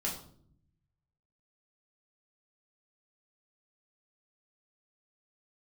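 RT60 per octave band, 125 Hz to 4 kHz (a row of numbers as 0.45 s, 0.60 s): 1.5 s, 1.1 s, 0.70 s, 0.50 s, 0.40 s, 0.40 s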